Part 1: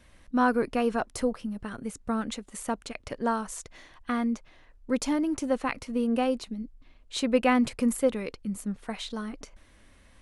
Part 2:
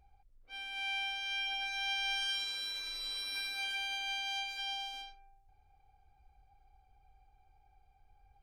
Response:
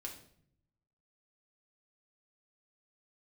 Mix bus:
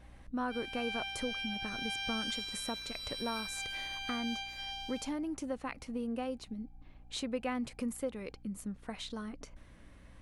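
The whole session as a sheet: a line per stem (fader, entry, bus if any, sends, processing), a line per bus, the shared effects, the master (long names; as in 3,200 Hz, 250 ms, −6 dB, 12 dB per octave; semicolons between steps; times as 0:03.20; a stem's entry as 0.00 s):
+0.5 dB, 0.00 s, no send, downward compressor 2 to 1, threshold −44 dBFS, peak gain reduction 14.5 dB
+3.0 dB, 0.00 s, no send, automatic ducking −6 dB, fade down 0.85 s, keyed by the first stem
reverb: not used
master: mains hum 60 Hz, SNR 21 dB; one half of a high-frequency compander decoder only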